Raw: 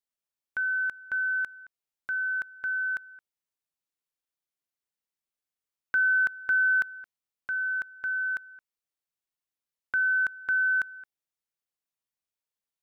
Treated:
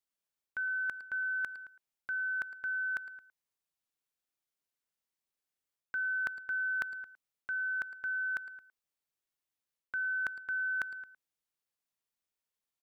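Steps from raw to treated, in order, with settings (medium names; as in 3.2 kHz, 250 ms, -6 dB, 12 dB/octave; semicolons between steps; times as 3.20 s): reverse; compression, threshold -33 dBFS, peak gain reduction 10.5 dB; reverse; speakerphone echo 110 ms, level -13 dB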